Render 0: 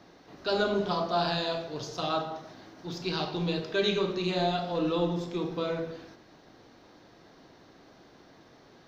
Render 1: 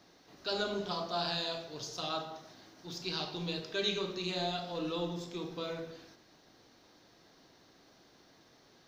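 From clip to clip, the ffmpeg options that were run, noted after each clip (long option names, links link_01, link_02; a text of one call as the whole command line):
ffmpeg -i in.wav -af "highshelf=frequency=3400:gain=12,volume=-8.5dB" out.wav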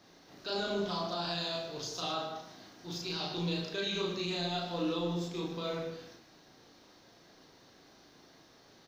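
ffmpeg -i in.wav -filter_complex "[0:a]alimiter=level_in=4dB:limit=-24dB:level=0:latency=1:release=39,volume=-4dB,asplit=2[link_01][link_02];[link_02]aecho=0:1:34.99|151.6:0.891|0.316[link_03];[link_01][link_03]amix=inputs=2:normalize=0" out.wav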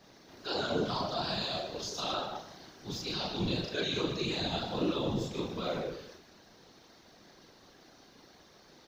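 ffmpeg -i in.wav -af "afftfilt=real='hypot(re,im)*cos(2*PI*random(0))':imag='hypot(re,im)*sin(2*PI*random(1))':win_size=512:overlap=0.75,volume=7.5dB" out.wav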